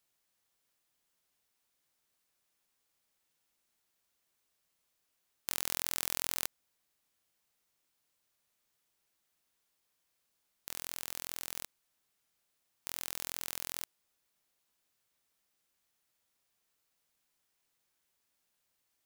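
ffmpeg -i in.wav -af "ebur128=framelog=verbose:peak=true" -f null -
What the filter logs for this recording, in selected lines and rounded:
Integrated loudness:
  I:         -37.3 LUFS
  Threshold: -47.5 LUFS
Loudness range:
  LRA:        10.0 LU
  Threshold: -61.4 LUFS
  LRA low:   -48.0 LUFS
  LRA high:  -38.0 LUFS
True peak:
  Peak:       -6.1 dBFS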